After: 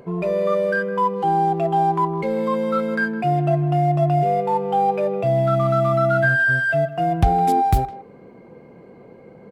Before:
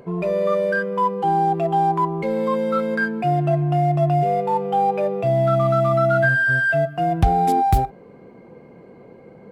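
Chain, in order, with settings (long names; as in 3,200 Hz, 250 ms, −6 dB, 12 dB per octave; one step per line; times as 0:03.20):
far-end echo of a speakerphone 160 ms, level −16 dB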